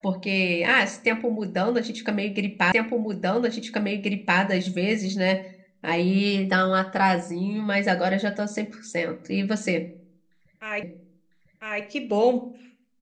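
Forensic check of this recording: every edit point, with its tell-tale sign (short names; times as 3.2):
2.72 repeat of the last 1.68 s
10.83 repeat of the last 1 s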